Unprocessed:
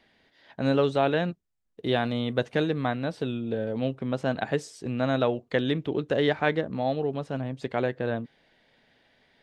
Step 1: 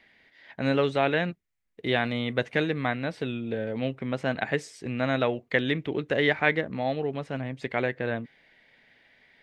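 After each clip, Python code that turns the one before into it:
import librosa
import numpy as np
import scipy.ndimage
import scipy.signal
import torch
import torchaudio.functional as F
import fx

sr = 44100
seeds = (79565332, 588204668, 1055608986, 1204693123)

y = fx.peak_eq(x, sr, hz=2100.0, db=11.0, octaves=0.7)
y = y * 10.0 ** (-1.5 / 20.0)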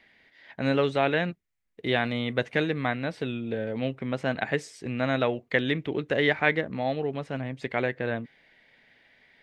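y = x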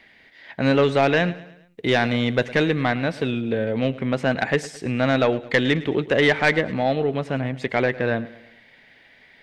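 y = 10.0 ** (-16.0 / 20.0) * np.tanh(x / 10.0 ** (-16.0 / 20.0))
y = fx.echo_feedback(y, sr, ms=108, feedback_pct=48, wet_db=-18.0)
y = y * 10.0 ** (7.5 / 20.0)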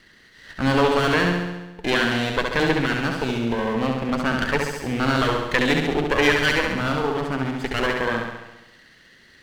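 y = fx.lower_of_two(x, sr, delay_ms=0.64)
y = fx.room_flutter(y, sr, wall_m=11.7, rt60_s=0.99)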